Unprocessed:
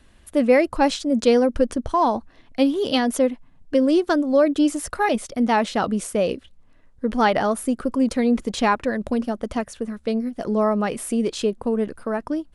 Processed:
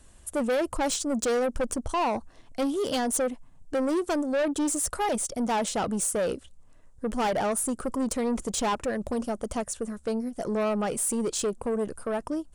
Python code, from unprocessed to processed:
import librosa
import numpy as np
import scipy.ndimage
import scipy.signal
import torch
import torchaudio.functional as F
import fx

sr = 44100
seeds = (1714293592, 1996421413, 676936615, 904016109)

y = fx.graphic_eq(x, sr, hz=(250, 2000, 4000, 8000), db=(-5, -6, -5, 12))
y = 10.0 ** (-22.5 / 20.0) * np.tanh(y / 10.0 ** (-22.5 / 20.0))